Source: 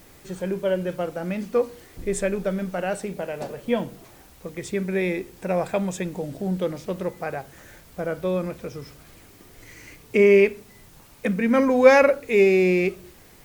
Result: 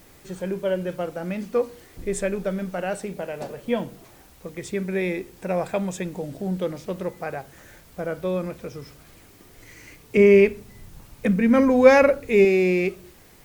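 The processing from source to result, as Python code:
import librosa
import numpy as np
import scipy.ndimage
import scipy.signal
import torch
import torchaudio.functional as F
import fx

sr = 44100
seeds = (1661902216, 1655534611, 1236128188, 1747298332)

y = fx.low_shelf(x, sr, hz=180.0, db=11.5, at=(10.17, 12.45))
y = F.gain(torch.from_numpy(y), -1.0).numpy()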